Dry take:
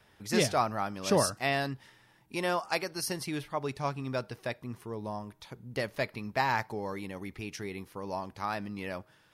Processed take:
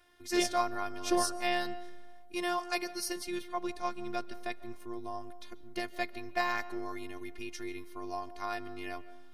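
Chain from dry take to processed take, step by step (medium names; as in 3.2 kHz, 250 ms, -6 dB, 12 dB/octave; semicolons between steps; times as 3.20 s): robot voice 352 Hz; algorithmic reverb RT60 1.5 s, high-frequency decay 0.3×, pre-delay 100 ms, DRR 17 dB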